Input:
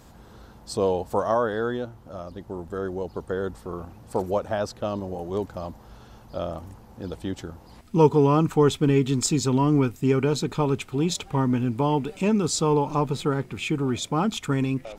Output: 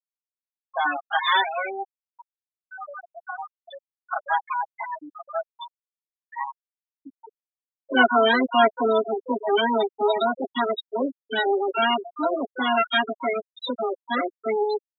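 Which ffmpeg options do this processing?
-filter_complex "[0:a]asetrate=70004,aresample=44100,atempo=0.629961,highpass=f=110:w=0.5412,highpass=f=110:w=1.3066,tiltshelf=f=1400:g=-5.5,asplit=2[s0][s1];[s1]adelay=223,lowpass=f=2500:p=1,volume=0.112,asplit=2[s2][s3];[s3]adelay=223,lowpass=f=2500:p=1,volume=0.54,asplit=2[s4][s5];[s5]adelay=223,lowpass=f=2500:p=1,volume=0.54,asplit=2[s6][s7];[s7]adelay=223,lowpass=f=2500:p=1,volume=0.54[s8];[s0][s2][s4][s6][s8]amix=inputs=5:normalize=0,asplit=3[s9][s10][s11];[s10]asetrate=66075,aresample=44100,atempo=0.66742,volume=0.355[s12];[s11]asetrate=88200,aresample=44100,atempo=0.5,volume=0.631[s13];[s9][s12][s13]amix=inputs=3:normalize=0,acrossover=split=320|2500[s14][s15][s16];[s16]acompressor=threshold=0.0126:ratio=20[s17];[s14][s15][s17]amix=inputs=3:normalize=0,afftdn=nr=12:nf=-33,equalizer=f=3600:t=o:w=0.42:g=12.5,aecho=1:1:7.4:0.84,afftfilt=real='re*gte(hypot(re,im),0.2)':imag='im*gte(hypot(re,im),0.2)':win_size=1024:overlap=0.75"

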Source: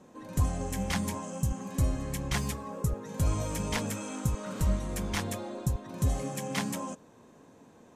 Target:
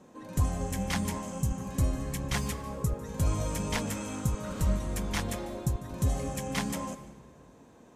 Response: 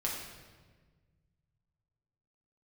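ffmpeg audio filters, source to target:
-filter_complex "[0:a]asplit=2[s0][s1];[1:a]atrim=start_sample=2205,adelay=148[s2];[s1][s2]afir=irnorm=-1:irlink=0,volume=0.126[s3];[s0][s3]amix=inputs=2:normalize=0"

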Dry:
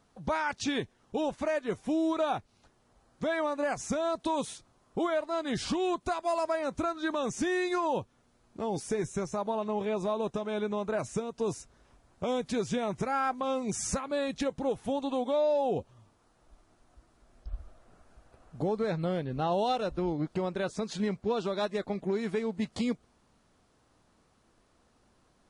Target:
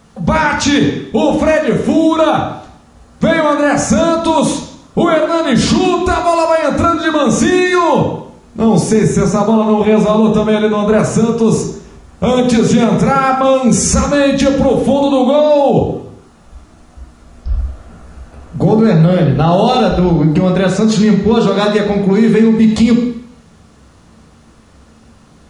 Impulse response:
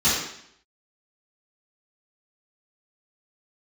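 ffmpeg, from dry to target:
-filter_complex "[0:a]asplit=2[s0][s1];[1:a]atrim=start_sample=2205,lowshelf=f=250:g=8.5[s2];[s1][s2]afir=irnorm=-1:irlink=0,volume=0.1[s3];[s0][s3]amix=inputs=2:normalize=0,alimiter=level_in=9.44:limit=0.891:release=50:level=0:latency=1,volume=0.891"

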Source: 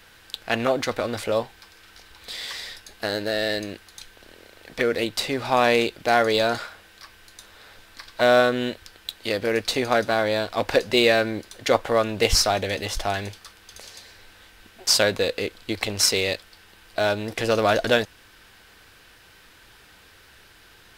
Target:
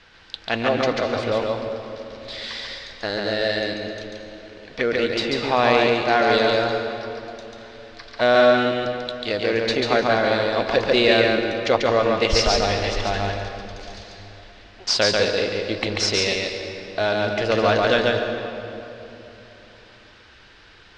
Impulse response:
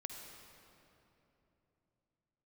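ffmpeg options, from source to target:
-filter_complex "[0:a]lowpass=f=5500:w=0.5412,lowpass=f=5500:w=1.3066,asplit=2[s0][s1];[1:a]atrim=start_sample=2205,adelay=141[s2];[s1][s2]afir=irnorm=-1:irlink=0,volume=1.26[s3];[s0][s3]amix=inputs=2:normalize=0"

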